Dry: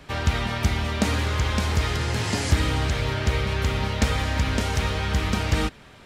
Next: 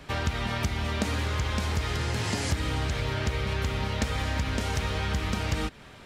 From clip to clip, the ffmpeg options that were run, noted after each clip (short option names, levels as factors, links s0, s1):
-af "acompressor=threshold=0.0501:ratio=3"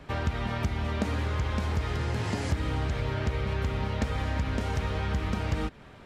-af "highshelf=f=2500:g=-10.5"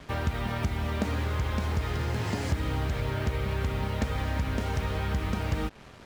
-af "acrusher=bits=7:mix=0:aa=0.5"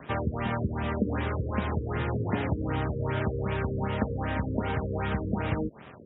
-af "highpass=110,lowpass=5100,afftfilt=real='re*lt(b*sr/1024,530*pow(3900/530,0.5+0.5*sin(2*PI*2.6*pts/sr)))':imag='im*lt(b*sr/1024,530*pow(3900/530,0.5+0.5*sin(2*PI*2.6*pts/sr)))':win_size=1024:overlap=0.75,volume=1.5"